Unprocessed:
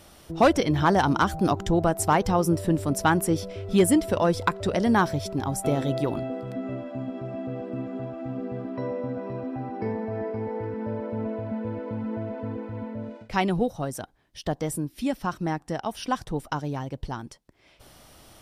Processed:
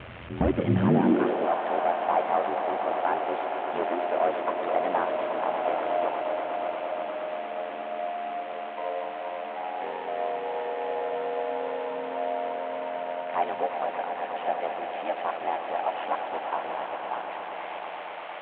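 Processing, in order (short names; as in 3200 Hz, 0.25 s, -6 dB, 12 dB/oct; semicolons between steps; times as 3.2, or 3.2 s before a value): delta modulation 16 kbps, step -33.5 dBFS; ring modulator 43 Hz; swelling echo 0.118 s, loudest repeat 5, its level -10.5 dB; high-pass sweep 68 Hz -> 700 Hz, 0.47–1.55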